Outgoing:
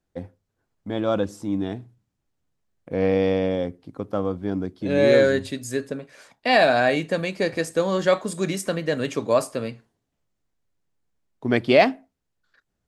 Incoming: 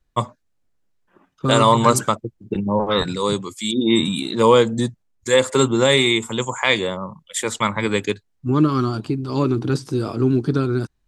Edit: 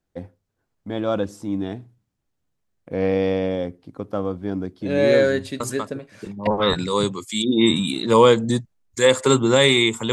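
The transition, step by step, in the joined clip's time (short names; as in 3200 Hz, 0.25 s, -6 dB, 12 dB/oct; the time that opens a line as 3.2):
outgoing
5.6 add incoming from 1.89 s 0.87 s -11 dB
6.47 switch to incoming from 2.76 s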